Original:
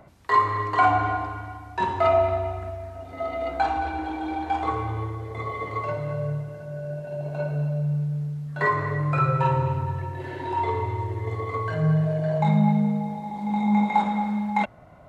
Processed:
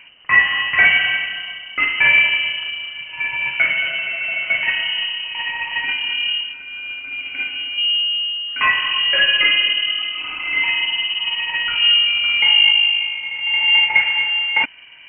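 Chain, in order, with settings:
variable-slope delta modulation 32 kbit/s
0:06.53–0:07.78: parametric band 82 Hz −11 dB 2.8 octaves
voice inversion scrambler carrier 3,000 Hz
level +6.5 dB

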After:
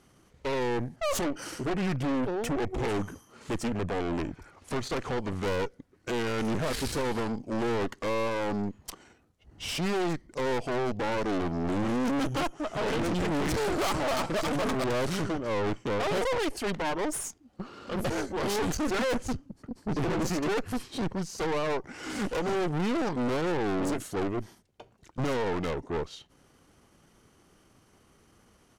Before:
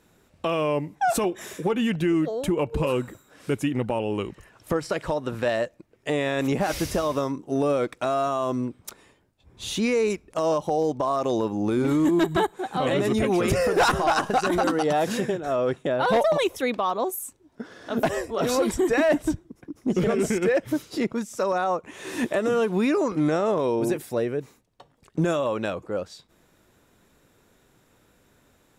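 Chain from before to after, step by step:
harmonic generator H 4 −8 dB, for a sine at −13.5 dBFS
pitch shifter −3.5 semitones
soft clipping −26 dBFS, distortion −5 dB

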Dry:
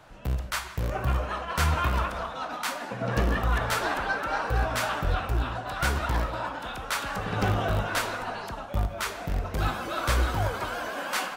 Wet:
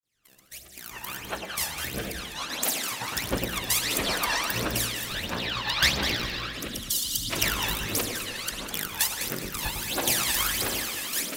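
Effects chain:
fade in at the beginning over 3.30 s
RIAA equalisation recording
gate on every frequency bin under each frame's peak −10 dB weak
0:05.25–0:06.53: high shelf with overshoot 6,300 Hz −12.5 dB, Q 1.5
0:06.68–0:07.30: gain on a spectral selection 320–2,800 Hz −29 dB
in parallel at +1.5 dB: downward compressor, threshold −35 dBFS, peak gain reduction 12 dB
on the sum: phase shifter 1.5 Hz, delay 1.2 ms, feedback 74%
log-companded quantiser 8 bits
rotating-speaker cabinet horn 0.65 Hz
on a send: delay that swaps between a low-pass and a high-pass 102 ms, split 910 Hz, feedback 57%, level −4.5 dB
on the sum: spring reverb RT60 3.8 s, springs 54 ms, chirp 35 ms, DRR 15 dB

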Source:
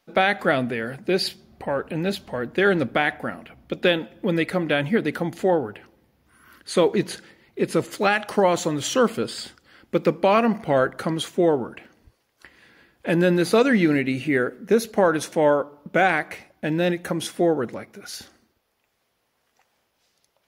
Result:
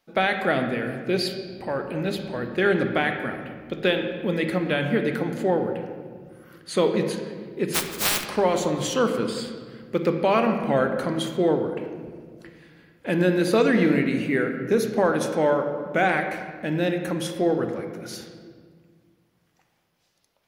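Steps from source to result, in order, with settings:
0:07.73–0:08.24: compressing power law on the bin magnitudes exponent 0.11
on a send: convolution reverb RT60 1.8 s, pre-delay 22 ms, DRR 5.5 dB
on the sum: level −3 dB

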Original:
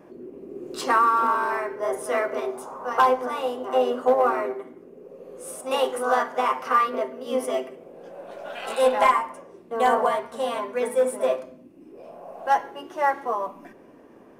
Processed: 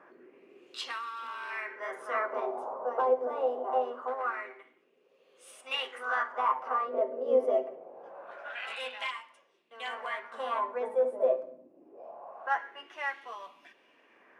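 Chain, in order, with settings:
dynamic equaliser 850 Hz, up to −4 dB, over −29 dBFS, Q 0.84
speech leveller within 4 dB 0.5 s
LFO wah 0.24 Hz 560–3,300 Hz, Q 2.4
level +2 dB

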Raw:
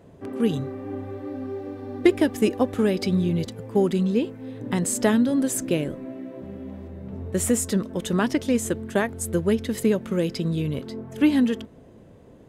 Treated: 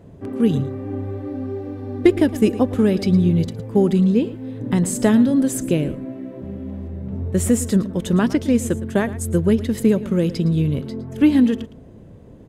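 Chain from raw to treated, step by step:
low-shelf EQ 270 Hz +10 dB
single-tap delay 112 ms −16 dB

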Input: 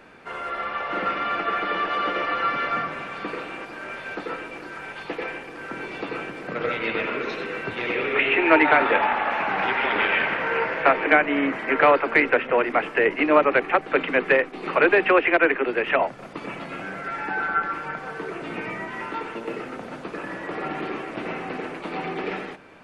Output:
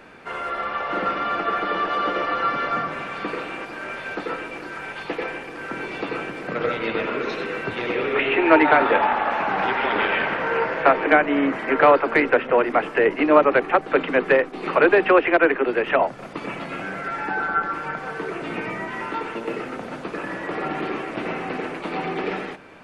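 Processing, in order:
dynamic equaliser 2,300 Hz, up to −6 dB, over −35 dBFS, Q 1.4
level +3 dB

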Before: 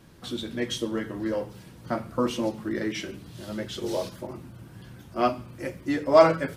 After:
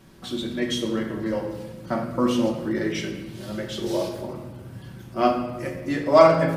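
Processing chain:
rectangular room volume 820 cubic metres, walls mixed, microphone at 1.1 metres
level +1 dB

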